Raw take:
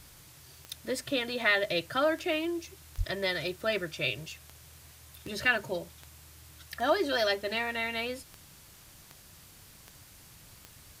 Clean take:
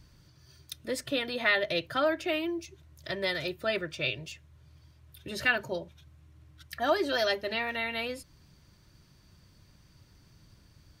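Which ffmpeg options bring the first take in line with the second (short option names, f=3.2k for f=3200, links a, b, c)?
-filter_complex "[0:a]adeclick=t=4,asplit=3[a][b][c];[a]afade=t=out:st=2.97:d=0.02[d];[b]highpass=f=140:w=0.5412,highpass=f=140:w=1.3066,afade=t=in:st=2.97:d=0.02,afade=t=out:st=3.09:d=0.02[e];[c]afade=t=in:st=3.09:d=0.02[f];[d][e][f]amix=inputs=3:normalize=0,afwtdn=0.002"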